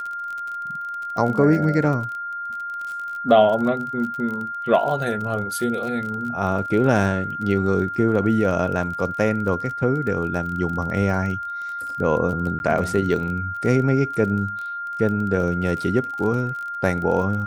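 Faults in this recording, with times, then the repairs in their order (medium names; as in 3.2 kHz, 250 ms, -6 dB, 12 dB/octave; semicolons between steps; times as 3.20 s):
crackle 33 per s -29 dBFS
whine 1.4 kHz -27 dBFS
12.59–12.60 s: dropout 11 ms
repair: de-click; band-stop 1.4 kHz, Q 30; interpolate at 12.59 s, 11 ms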